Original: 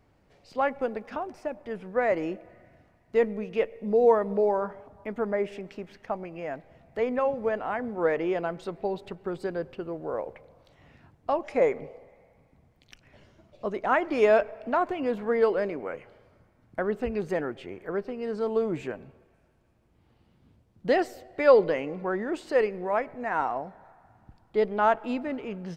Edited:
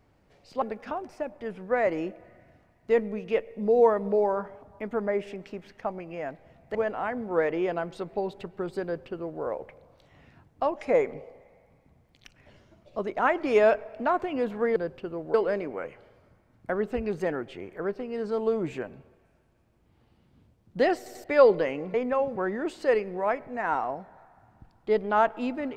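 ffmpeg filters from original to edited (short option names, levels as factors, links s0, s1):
-filter_complex "[0:a]asplit=10[s0][s1][s2][s3][s4][s5][s6][s7][s8][s9];[s0]atrim=end=0.622[s10];[s1]atrim=start=0.868:end=7.002[s11];[s2]atrim=start=7.418:end=15.432[s12];[s3]atrim=start=9.508:end=10.092[s13];[s4]atrim=start=15.428:end=21.152[s14];[s5]atrim=start=21.058:end=21.152[s15];[s6]atrim=start=21.058:end=21.152[s16];[s7]atrim=start=21.328:end=22.032[s17];[s8]atrim=start=6.998:end=7.422[s18];[s9]atrim=start=22.028[s19];[s10][s11]acrossfade=d=0.004:c1=hsin:c2=hsin[s20];[s20][s12]acrossfade=d=0.004:c1=hsin:c2=hsin[s21];[s21][s13]acrossfade=d=0.004:c1=hsin:c2=hsin[s22];[s22][s14]acrossfade=d=0.004:c1=hsin:c2=hsin[s23];[s23][s15]acrossfade=d=0.004:c1=hsin:c2=hsin[s24];[s24][s16]acrossfade=d=0.004:c1=hsin:c2=hsin[s25];[s25][s17]acrossfade=d=0.004:c1=hsin:c2=hsin[s26];[s26][s18]acrossfade=d=0.004:c1=hsin:c2=hsin[s27];[s27][s19]acrossfade=d=0.004:c1=hsin:c2=hsin"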